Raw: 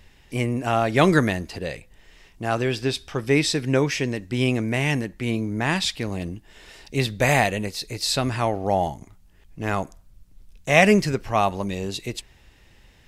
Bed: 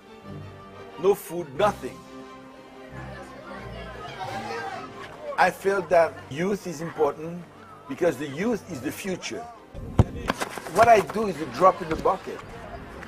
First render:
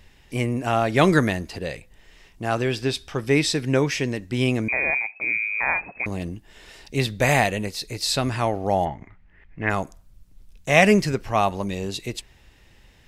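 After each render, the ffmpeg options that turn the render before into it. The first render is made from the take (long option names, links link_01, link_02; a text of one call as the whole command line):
ffmpeg -i in.wav -filter_complex "[0:a]asettb=1/sr,asplit=3[link_01][link_02][link_03];[link_01]atrim=end=4.684[link_04];[link_02]atrim=start=4.68:end=6.06,asetpts=PTS-STARTPTS,afade=type=in:duration=0.004:curve=qsin,afade=type=out:start_time=1.376:duration=0.004:curve=qsin,lowpass=frequency=2200:width_type=q:width=0.5098,lowpass=frequency=2200:width_type=q:width=0.6013,lowpass=frequency=2200:width_type=q:width=0.9,lowpass=frequency=2200:width_type=q:width=2.563,afreqshift=-2600[link_05];[link_03]atrim=start=6.056[link_06];[link_04][link_05]acrossfade=duration=0.004:curve1=hsin:curve2=qsin[link_07];[link_07][link_06]acrossfade=duration=0.004:curve1=qsin:curve2=hsin,asplit=3[link_08][link_09][link_10];[link_08]afade=type=out:start_time=8.84:duration=0.02[link_11];[link_09]lowpass=frequency=2000:width_type=q:width=3.9,afade=type=in:start_time=8.84:duration=0.02,afade=type=out:start_time=9.69:duration=0.02[link_12];[link_10]afade=type=in:start_time=9.69:duration=0.02[link_13];[link_11][link_12][link_13]amix=inputs=3:normalize=0" out.wav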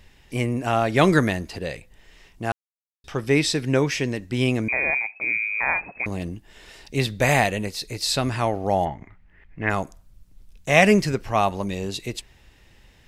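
ffmpeg -i in.wav -filter_complex "[0:a]asplit=3[link_01][link_02][link_03];[link_01]atrim=end=2.52,asetpts=PTS-STARTPTS,afade=type=out:start_time=2.516:duration=0.004:curve=hsin[link_04];[link_02]atrim=start=2.52:end=3.04,asetpts=PTS-STARTPTS,volume=0[link_05];[link_03]atrim=start=3.04,asetpts=PTS-STARTPTS,afade=type=in:duration=0.004:curve=hsin[link_06];[link_04][link_05][link_06]concat=n=3:v=0:a=1" out.wav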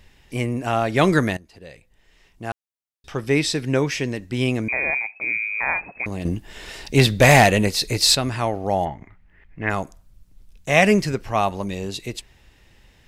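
ffmpeg -i in.wav -filter_complex "[0:a]asettb=1/sr,asplit=3[link_01][link_02][link_03];[link_01]atrim=end=6.254[link_04];[link_02]atrim=start=6.25:end=8.15,asetpts=PTS-STARTPTS,afade=type=in:duration=0.004:curve=qsin,afade=type=out:start_time=1.896:duration=0.004:curve=qsin,aeval=exprs='0.531*sin(PI/2*1.78*val(0)/0.531)':channel_layout=same[link_05];[link_03]atrim=start=8.146[link_06];[link_04][link_05]acrossfade=duration=0.004:curve1=hsin:curve2=qsin[link_07];[link_07][link_06]acrossfade=duration=0.004:curve1=qsin:curve2=hsin,asplit=2[link_08][link_09];[link_08]atrim=end=1.37,asetpts=PTS-STARTPTS,afade=type=out:start_time=1.366:duration=0.004:curve=hsin:silence=0.11885[link_10];[link_09]atrim=start=1.37,asetpts=PTS-STARTPTS,afade=type=in:duration=1.77:silence=0.11885[link_11];[link_10][link_11]concat=n=2:v=0:a=1" out.wav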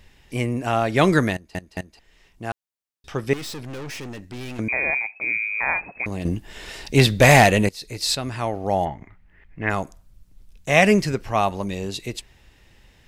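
ffmpeg -i in.wav -filter_complex "[0:a]asettb=1/sr,asplit=3[link_01][link_02][link_03];[link_01]atrim=end=3.334[link_04];[link_02]atrim=start=3.33:end=4.59,asetpts=PTS-STARTPTS,afade=type=in:duration=0.004:curve=qsin,afade=type=out:start_time=1.256:duration=0.004:curve=qsin,aeval=exprs='(tanh(39.8*val(0)+0.55)-tanh(0.55))/39.8':channel_layout=same[link_05];[link_03]atrim=start=4.586[link_06];[link_04][link_05]acrossfade=duration=0.004:curve1=hsin:curve2=qsin[link_07];[link_07][link_06]acrossfade=duration=0.004:curve1=qsin:curve2=hsin,asplit=5[link_08][link_09][link_10][link_11][link_12];[link_08]atrim=end=1.552[link_13];[link_09]atrim=start=1.328:end=1.552[link_14];[link_10]atrim=start=1.328:end=1.552[link_15];[link_11]atrim=start=1.988:end=7.69,asetpts=PTS-STARTPTS,afade=type=out:start_time=5.698:duration=0.004:curve=hsin:silence=0.11885[link_16];[link_12]atrim=start=7.69,asetpts=PTS-STARTPTS,afade=type=in:duration=1.07:silence=0.11885[link_17];[link_13][link_14]acrossfade=duration=0.004:curve1=hsin:curve2=hsin[link_18];[link_18][link_15]acrossfade=duration=0.004:curve1=hsin:curve2=hsin[link_19];[link_16][link_17]concat=n=2:v=0:a=1[link_20];[link_19][link_20]acrossfade=duration=0.004:curve1=hsin:curve2=hsin" out.wav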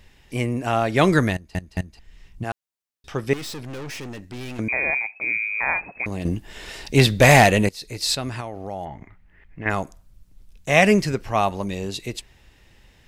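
ffmpeg -i in.wav -filter_complex "[0:a]asettb=1/sr,asplit=3[link_01][link_02][link_03];[link_01]atrim=end=1.064[link_04];[link_02]atrim=start=1.06:end=2.44,asetpts=PTS-STARTPTS,afade=type=in:duration=0.004:curve=qsin,afade=type=out:start_time=1.376:duration=0.004:curve=qsin,asubboost=boost=10:cutoff=210[link_05];[link_03]atrim=start=2.436[link_06];[link_04][link_05]acrossfade=duration=0.004:curve1=hsin:curve2=qsin[link_07];[link_07][link_06]acrossfade=duration=0.004:curve1=qsin:curve2=hsin,asettb=1/sr,asplit=3[link_08][link_09][link_10];[link_08]atrim=end=8.404[link_11];[link_09]atrim=start=8.4:end=9.66,asetpts=PTS-STARTPTS,afade=type=in:duration=0.004:curve=qsin,afade=type=out:start_time=1.256:duration=0.004:curve=qsin,acompressor=threshold=-30dB:ratio=3:attack=3.2:release=140:knee=1:detection=peak[link_12];[link_10]atrim=start=9.656[link_13];[link_11][link_12]acrossfade=duration=0.004:curve1=hsin:curve2=qsin[link_14];[link_14][link_13]acrossfade=duration=0.004:curve1=qsin:curve2=hsin" out.wav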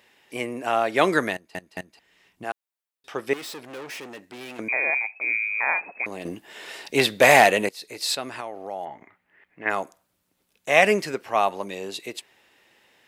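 ffmpeg -i in.wav -af "highpass=370,equalizer=frequency=5800:width_type=o:width=1.1:gain=-4.5" out.wav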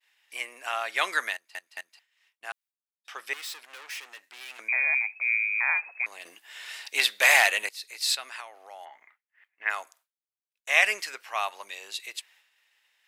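ffmpeg -i in.wav -af "highpass=1400,agate=range=-33dB:threshold=-55dB:ratio=3:detection=peak" out.wav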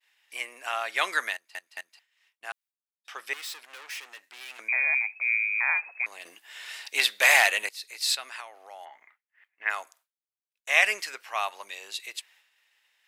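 ffmpeg -i in.wav -af anull out.wav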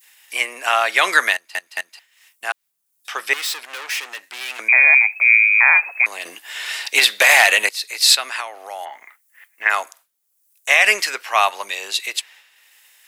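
ffmpeg -i in.wav -filter_complex "[0:a]acrossover=split=430|2200|7500[link_01][link_02][link_03][link_04];[link_04]acompressor=mode=upward:threshold=-55dB:ratio=2.5[link_05];[link_01][link_02][link_03][link_05]amix=inputs=4:normalize=0,alimiter=level_in=13.5dB:limit=-1dB:release=50:level=0:latency=1" out.wav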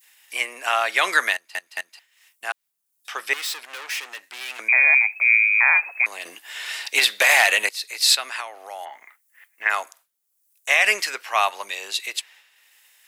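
ffmpeg -i in.wav -af "volume=-4dB" out.wav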